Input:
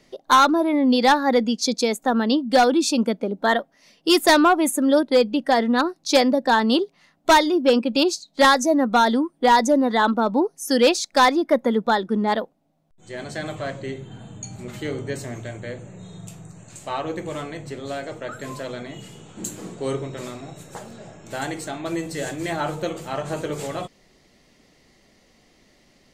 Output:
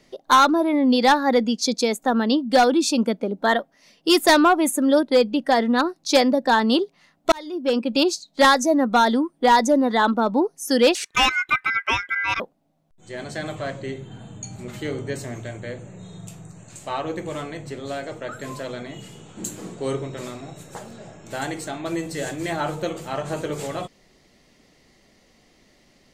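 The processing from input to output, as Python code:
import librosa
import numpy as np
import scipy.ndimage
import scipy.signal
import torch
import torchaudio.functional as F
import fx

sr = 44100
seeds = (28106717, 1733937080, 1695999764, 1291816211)

y = fx.ring_mod(x, sr, carrier_hz=1800.0, at=(10.95, 12.4))
y = fx.edit(y, sr, fx.fade_in_span(start_s=7.32, length_s=0.63), tone=tone)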